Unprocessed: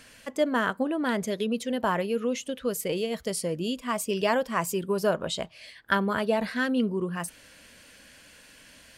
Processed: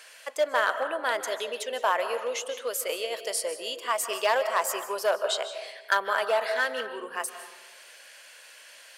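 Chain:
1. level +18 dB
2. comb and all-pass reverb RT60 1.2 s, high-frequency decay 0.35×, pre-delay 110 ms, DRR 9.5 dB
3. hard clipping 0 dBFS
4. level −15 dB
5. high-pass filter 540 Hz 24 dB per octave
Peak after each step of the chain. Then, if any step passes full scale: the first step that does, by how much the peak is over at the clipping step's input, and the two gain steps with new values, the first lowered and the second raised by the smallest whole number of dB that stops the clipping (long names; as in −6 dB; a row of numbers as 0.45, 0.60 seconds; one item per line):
+8.0, +8.0, 0.0, −15.0, −9.0 dBFS
step 1, 8.0 dB
step 1 +10 dB, step 4 −7 dB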